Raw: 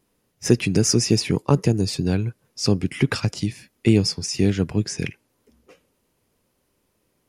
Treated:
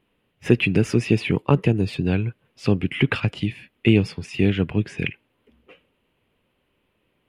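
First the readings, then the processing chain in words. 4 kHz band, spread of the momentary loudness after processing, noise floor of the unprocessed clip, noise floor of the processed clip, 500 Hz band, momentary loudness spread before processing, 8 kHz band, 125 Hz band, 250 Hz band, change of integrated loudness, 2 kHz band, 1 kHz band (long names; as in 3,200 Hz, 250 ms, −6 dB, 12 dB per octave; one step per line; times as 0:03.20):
−5.5 dB, 10 LU, −70 dBFS, −71 dBFS, 0.0 dB, 10 LU, below −15 dB, 0.0 dB, 0.0 dB, −0.5 dB, +5.0 dB, +0.5 dB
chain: high shelf with overshoot 4,100 Hz −12 dB, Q 3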